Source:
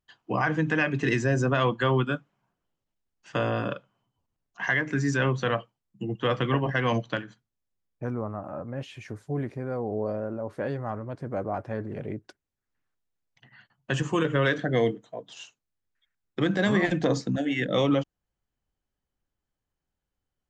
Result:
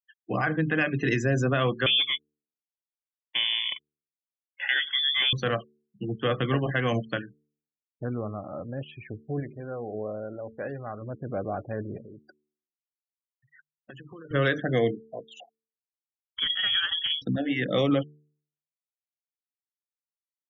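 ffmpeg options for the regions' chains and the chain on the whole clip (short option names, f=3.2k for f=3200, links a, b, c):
-filter_complex "[0:a]asettb=1/sr,asplit=3[a][b][c];[a]atrim=end=1.864[d];[b]atrim=start=1.86:end=5.33,asetpts=PTS-STARTPTS,afade=t=in:d=0.004:c=qsin,afade=t=out:st=3.466:d=0.004:c=qsin,aeval=exprs='sgn(val(0))*max(abs(val(0))-0.00237,0)':c=same,acrusher=bits=8:dc=4:mix=0:aa=0.000001,lowpass=f=3.1k:t=q:w=0.5098,lowpass=f=3.1k:t=q:w=0.6013,lowpass=f=3.1k:t=q:w=0.9,lowpass=f=3.1k:t=q:w=2.563,afreqshift=-3600[e];[c]atrim=start=5.326[f];[d][e]acrossfade=d=0.004:c1=hsin:c2=qsin[g];[g][f]acrossfade=d=0.004:c1=qsin:c2=hsin,asettb=1/sr,asplit=3[h][i][j];[h]atrim=end=9.404[k];[i]atrim=start=9.4:end=11.02,asetpts=PTS-STARTPTS,afade=t=in:d=0.004:c=qsin,afade=t=out:st=1.616:d=0.004:c=qsin,equalizer=f=160:w=0.3:g=-5.5,bandreject=f=50:t=h:w=6,bandreject=f=100:t=h:w=6,bandreject=f=150:t=h:w=6,bandreject=f=200:t=h:w=6,bandreject=f=250:t=h:w=6,bandreject=f=300:t=h:w=6,bandreject=f=350:t=h:w=6,bandreject=f=400:t=h:w=6[l];[j]atrim=start=11.016[m];[k][l]acrossfade=d=0.004:c1=hsin:c2=qsin[n];[n][m]acrossfade=d=0.004:c1=qsin:c2=hsin,asettb=1/sr,asplit=3[o][p][q];[o]atrim=end=11.974[r];[p]atrim=start=11.97:end=14.31,asetpts=PTS-STARTPTS,afade=t=in:d=0.004:c=qsin,afade=t=out:st=2.336:d=0.004:c=qsin,lowshelf=f=160:g=-6,acompressor=threshold=-41dB:ratio=8:attack=3.2:release=140:knee=1:detection=peak[s];[q]atrim=start=14.306[t];[r][s]acrossfade=d=0.004:c1=hsin:c2=qsin[u];[u][t]acrossfade=d=0.004:c1=qsin:c2=hsin,asettb=1/sr,asplit=3[v][w][x];[v]atrim=end=15.404[y];[w]atrim=start=15.4:end=17.22,asetpts=PTS-STARTPTS,afade=t=in:d=0.004:c=qsin,afade=t=out:st=1.816:d=0.004:c=qsin,equalizer=f=570:t=o:w=1.9:g=-8,lowpass=f=3k:t=q:w=0.5098,lowpass=f=3k:t=q:w=0.6013,lowpass=f=3k:t=q:w=0.9,lowpass=f=3k:t=q:w=2.563,afreqshift=-3500[z];[x]atrim=start=17.216[aa];[y][z]acrossfade=d=0.004:c1=hsin:c2=qsin[ab];[ab][aa]acrossfade=d=0.004:c1=qsin:c2=hsin,afftfilt=real='re*gte(hypot(re,im),0.01)':imag='im*gte(hypot(re,im),0.01)':win_size=1024:overlap=0.75,equalizer=f=950:w=6.5:g=-12.5,bandreject=f=74.45:t=h:w=4,bandreject=f=148.9:t=h:w=4,bandreject=f=223.35:t=h:w=4,bandreject=f=297.8:t=h:w=4,bandreject=f=372.25:t=h:w=4,bandreject=f=446.7:t=h:w=4"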